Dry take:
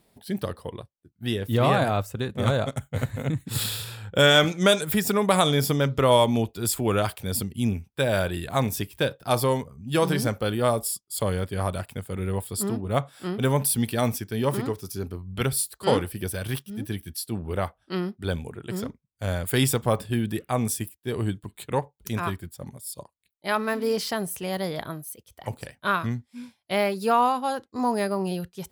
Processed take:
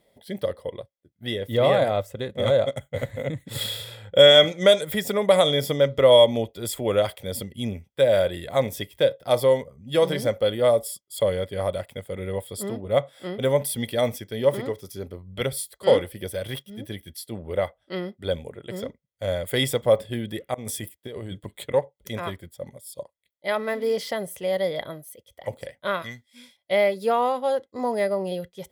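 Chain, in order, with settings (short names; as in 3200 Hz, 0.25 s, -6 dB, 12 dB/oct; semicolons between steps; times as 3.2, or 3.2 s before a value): 26.02–26.57 tilt shelf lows -9.5 dB, about 1500 Hz; small resonant body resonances 550/2000/3300 Hz, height 15 dB, ringing for 25 ms; 20.54–21.74 negative-ratio compressor -29 dBFS, ratio -1; gain -5.5 dB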